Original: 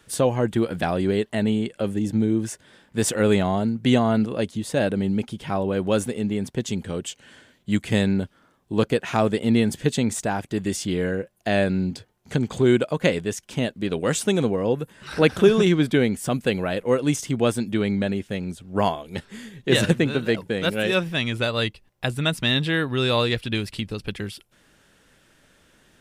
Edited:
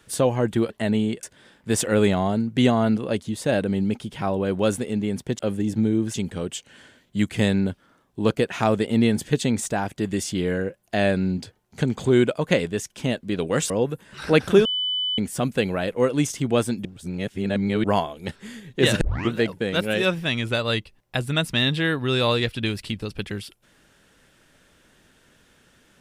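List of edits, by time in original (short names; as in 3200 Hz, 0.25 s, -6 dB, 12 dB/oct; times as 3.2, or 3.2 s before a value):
0.7–1.23 cut
1.76–2.51 move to 6.67
14.23–14.59 cut
15.54–16.07 bleep 3000 Hz -22 dBFS
17.74–18.73 reverse
19.9 tape start 0.31 s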